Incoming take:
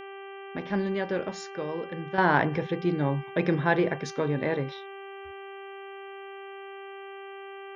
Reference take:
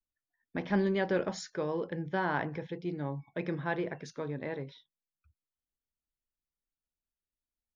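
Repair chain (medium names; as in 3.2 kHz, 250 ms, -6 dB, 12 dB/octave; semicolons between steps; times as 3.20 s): de-hum 392.5 Hz, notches 8; trim 0 dB, from 2.18 s -9.5 dB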